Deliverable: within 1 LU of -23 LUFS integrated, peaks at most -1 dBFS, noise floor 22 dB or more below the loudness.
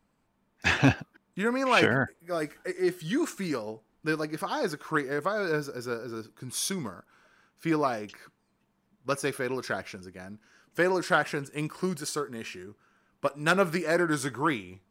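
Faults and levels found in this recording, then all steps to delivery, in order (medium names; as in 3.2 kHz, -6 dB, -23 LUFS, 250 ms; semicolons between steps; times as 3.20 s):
loudness -29.0 LUFS; peak level -9.0 dBFS; loudness target -23.0 LUFS
-> trim +6 dB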